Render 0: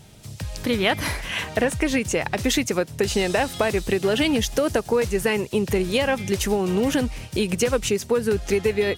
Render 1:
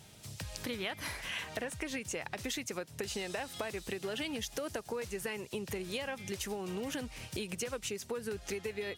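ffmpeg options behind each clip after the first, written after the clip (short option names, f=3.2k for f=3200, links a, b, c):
-af "highpass=53,tiltshelf=f=670:g=-3,acompressor=threshold=-31dB:ratio=3,volume=-7dB"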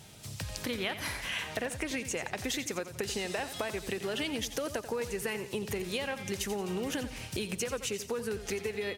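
-af "aecho=1:1:88|176|264|352:0.251|0.1|0.0402|0.0161,volume=3.5dB"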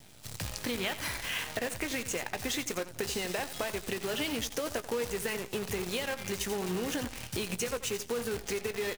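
-filter_complex "[0:a]acrusher=bits=7:dc=4:mix=0:aa=0.000001,asplit=2[a][b];[b]adelay=17,volume=-13dB[c];[a][c]amix=inputs=2:normalize=0"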